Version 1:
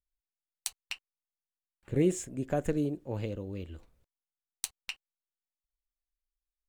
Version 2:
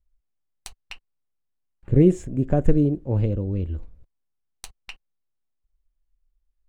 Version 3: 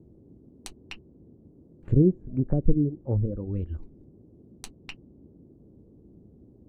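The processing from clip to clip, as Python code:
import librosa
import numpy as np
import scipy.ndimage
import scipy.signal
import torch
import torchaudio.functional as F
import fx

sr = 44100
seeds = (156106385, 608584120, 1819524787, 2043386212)

y1 = fx.tilt_eq(x, sr, slope=-3.5)
y1 = F.gain(torch.from_numpy(y1), 4.0).numpy()
y2 = fx.dereverb_blind(y1, sr, rt60_s=0.76)
y2 = fx.env_lowpass_down(y2, sr, base_hz=380.0, full_db=-18.5)
y2 = fx.dmg_noise_band(y2, sr, seeds[0], low_hz=48.0, high_hz=360.0, level_db=-51.0)
y2 = F.gain(torch.from_numpy(y2), -2.0).numpy()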